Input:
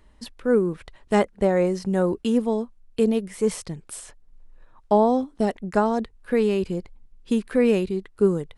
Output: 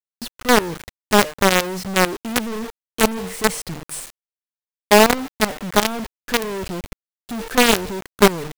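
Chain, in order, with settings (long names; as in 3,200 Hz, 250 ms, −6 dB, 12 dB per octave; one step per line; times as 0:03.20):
hum removal 151.9 Hz, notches 20
log-companded quantiser 2 bits
level −1 dB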